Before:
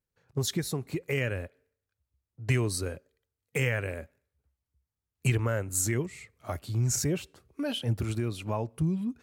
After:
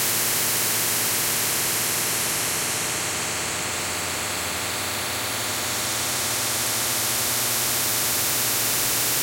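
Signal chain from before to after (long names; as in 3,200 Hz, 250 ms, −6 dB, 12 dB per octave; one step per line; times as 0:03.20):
extreme stretch with random phases 9.7×, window 1.00 s, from 0:05.93
every bin compressed towards the loudest bin 10 to 1
level +6 dB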